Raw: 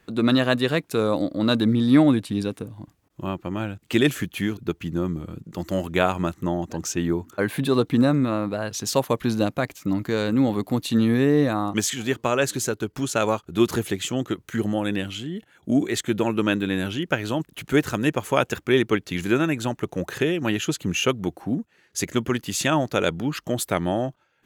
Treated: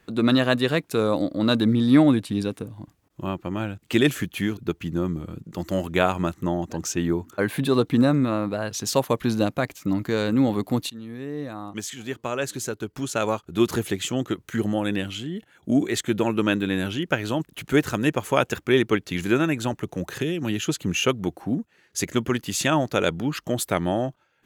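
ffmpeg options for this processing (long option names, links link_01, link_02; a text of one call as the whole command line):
ffmpeg -i in.wav -filter_complex "[0:a]asettb=1/sr,asplit=3[link_01][link_02][link_03];[link_01]atrim=end=19.734[link_04];[link_02]atrim=start=19.73:end=20.65,asetpts=PTS-STARTPTS,afade=type=in:duration=0.004:curve=qsin,afade=type=out:start_time=0.916:duration=0.004:curve=qsin,acrossover=split=340|3000[link_05][link_06][link_07];[link_06]acompressor=threshold=-33dB:ratio=6:attack=3.2:release=140:knee=2.83:detection=peak[link_08];[link_05][link_08][link_07]amix=inputs=3:normalize=0[link_09];[link_03]atrim=start=20.646[link_10];[link_04][link_09]acrossfade=duration=0.004:curve1=hsin:curve2=qsin[link_11];[link_11][link_10]acrossfade=duration=0.004:curve1=qsin:curve2=hsin,asplit=2[link_12][link_13];[link_12]atrim=end=10.9,asetpts=PTS-STARTPTS,afade=type=out:start_time=10.896:duration=0.004:curve=hsin:silence=0.0841395[link_14];[link_13]atrim=start=10.9,asetpts=PTS-STARTPTS,afade=type=in:duration=3.08:silence=0.0841395[link_15];[link_14][link_15]concat=n=2:v=0:a=1" out.wav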